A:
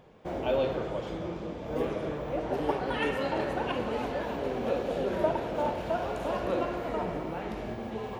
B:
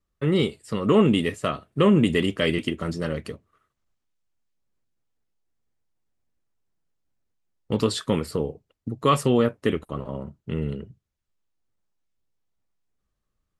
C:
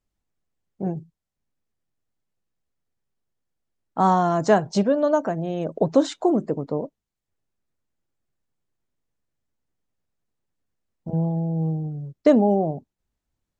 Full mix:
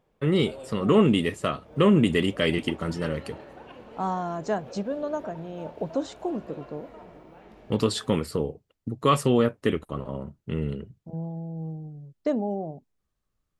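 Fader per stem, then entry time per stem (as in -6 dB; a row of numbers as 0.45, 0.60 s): -14.5, -1.0, -10.0 dB; 0.00, 0.00, 0.00 s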